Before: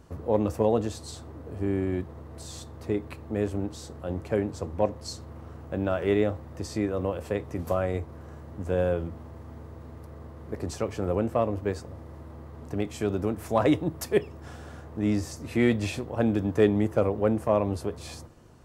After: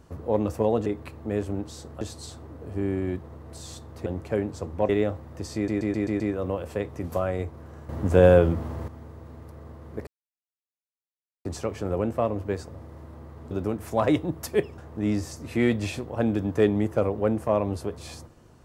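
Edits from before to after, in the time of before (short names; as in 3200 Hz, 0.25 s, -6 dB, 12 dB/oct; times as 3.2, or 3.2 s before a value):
2.91–4.06 move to 0.86
4.89–6.09 cut
6.75 stutter 0.13 s, 6 plays
8.44–9.43 gain +10 dB
10.62 insert silence 1.38 s
12.68–13.09 cut
14.36–14.78 cut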